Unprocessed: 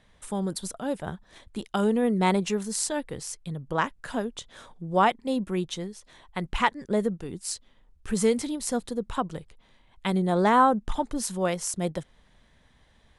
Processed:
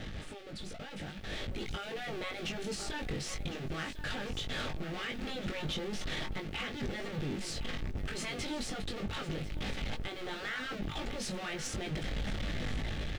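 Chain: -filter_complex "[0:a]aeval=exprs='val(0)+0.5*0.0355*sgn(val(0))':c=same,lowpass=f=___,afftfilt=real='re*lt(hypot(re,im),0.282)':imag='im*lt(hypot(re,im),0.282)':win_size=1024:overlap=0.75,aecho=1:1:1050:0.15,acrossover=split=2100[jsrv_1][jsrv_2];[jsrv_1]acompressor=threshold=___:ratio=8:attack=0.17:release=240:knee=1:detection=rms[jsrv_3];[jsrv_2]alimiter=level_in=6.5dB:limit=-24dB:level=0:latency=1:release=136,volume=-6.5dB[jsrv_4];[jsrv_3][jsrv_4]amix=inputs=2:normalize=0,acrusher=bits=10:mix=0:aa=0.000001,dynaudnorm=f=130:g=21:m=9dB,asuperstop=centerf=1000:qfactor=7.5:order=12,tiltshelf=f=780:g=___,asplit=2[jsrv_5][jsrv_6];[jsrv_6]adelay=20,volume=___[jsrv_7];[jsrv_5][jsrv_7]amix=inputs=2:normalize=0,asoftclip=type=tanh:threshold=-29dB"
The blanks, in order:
3.4k, -47dB, 8, -4.5dB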